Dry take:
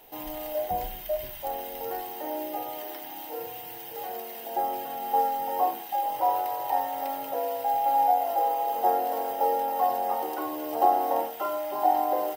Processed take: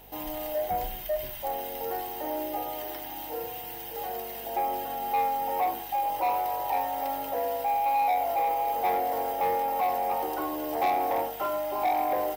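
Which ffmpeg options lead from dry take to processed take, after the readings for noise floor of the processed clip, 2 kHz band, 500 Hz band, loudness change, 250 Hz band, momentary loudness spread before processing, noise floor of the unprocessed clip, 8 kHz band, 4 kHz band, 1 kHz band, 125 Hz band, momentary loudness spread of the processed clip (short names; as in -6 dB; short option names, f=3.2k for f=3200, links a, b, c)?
-39 dBFS, +4.5 dB, -0.5 dB, -1.0 dB, 0.0 dB, 12 LU, -40 dBFS, +0.5 dB, +1.0 dB, -1.5 dB, n/a, 9 LU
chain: -af "acontrast=82,aeval=exprs='val(0)+0.00316*(sin(2*PI*50*n/s)+sin(2*PI*2*50*n/s)/2+sin(2*PI*3*50*n/s)/3+sin(2*PI*4*50*n/s)/4+sin(2*PI*5*50*n/s)/5)':c=same,asoftclip=type=tanh:threshold=-15.5dB,volume=-5.5dB"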